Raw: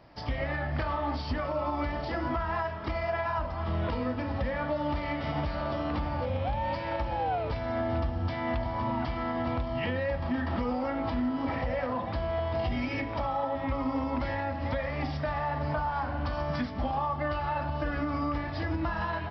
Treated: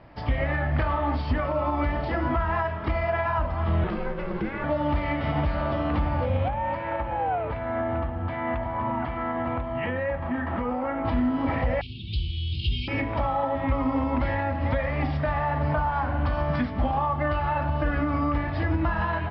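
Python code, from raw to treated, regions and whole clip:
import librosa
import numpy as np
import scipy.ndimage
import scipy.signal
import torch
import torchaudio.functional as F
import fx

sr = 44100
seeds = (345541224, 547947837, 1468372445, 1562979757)

y = fx.chain(x, sr, fx.peak_eq(hz=560.0, db=-11.5, octaves=0.36),
    fx.ring_mod(carrier_hz=270.0), at=(3.84, 4.64))
y = fx.chain(y, sr, fx.lowpass(hz=1800.0, slope=12),
    fx.tilt_eq(slope=2.0), at=(6.48, 11.05))
y = fx.chain(y, sr, fx.brickwall_bandstop(low_hz=410.0, high_hz=2000.0),
    fx.high_shelf_res(hz=2600.0, db=13.0, q=1.5),
    fx.fixed_phaser(hz=1400.0, stages=8), at=(11.81, 12.88))
y = scipy.signal.sosfilt(scipy.signal.cheby1(2, 1.0, 2600.0, 'lowpass', fs=sr, output='sos'), y)
y = fx.low_shelf(y, sr, hz=160.0, db=4.5)
y = y * librosa.db_to_amplitude(5.0)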